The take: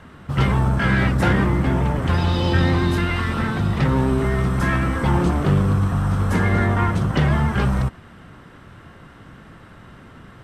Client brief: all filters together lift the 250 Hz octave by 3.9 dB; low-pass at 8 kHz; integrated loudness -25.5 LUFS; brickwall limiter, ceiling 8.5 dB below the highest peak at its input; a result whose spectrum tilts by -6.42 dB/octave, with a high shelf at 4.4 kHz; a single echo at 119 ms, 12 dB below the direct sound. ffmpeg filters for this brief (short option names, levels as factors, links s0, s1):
-af "lowpass=8000,equalizer=f=250:t=o:g=5.5,highshelf=f=4400:g=4.5,alimiter=limit=0.224:level=0:latency=1,aecho=1:1:119:0.251,volume=0.631"